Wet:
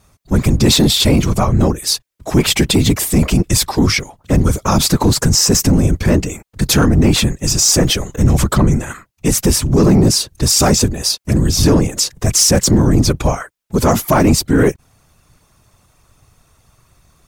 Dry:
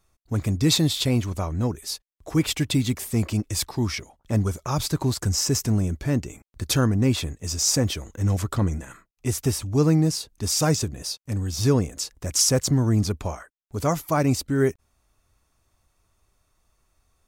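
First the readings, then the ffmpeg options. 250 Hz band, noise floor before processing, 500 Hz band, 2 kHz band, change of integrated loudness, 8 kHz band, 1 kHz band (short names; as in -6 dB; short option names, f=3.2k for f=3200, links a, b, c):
+10.5 dB, -71 dBFS, +10.0 dB, +11.5 dB, +10.5 dB, +11.0 dB, +11.5 dB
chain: -af "afftfilt=real='hypot(re,im)*cos(2*PI*random(0))':imag='hypot(re,im)*sin(2*PI*random(1))':win_size=512:overlap=0.75,asoftclip=type=tanh:threshold=-19.5dB,alimiter=level_in=24.5dB:limit=-1dB:release=50:level=0:latency=1,volume=-3.5dB"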